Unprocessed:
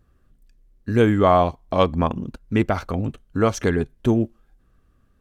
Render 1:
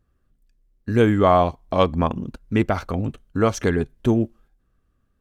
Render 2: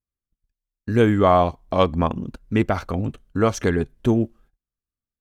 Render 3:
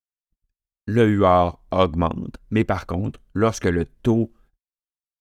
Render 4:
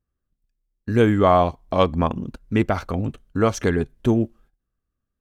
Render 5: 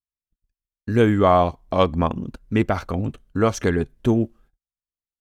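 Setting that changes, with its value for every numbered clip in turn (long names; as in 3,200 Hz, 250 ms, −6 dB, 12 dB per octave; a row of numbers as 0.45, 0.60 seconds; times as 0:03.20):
noise gate, range: −7, −33, −57, −20, −45 decibels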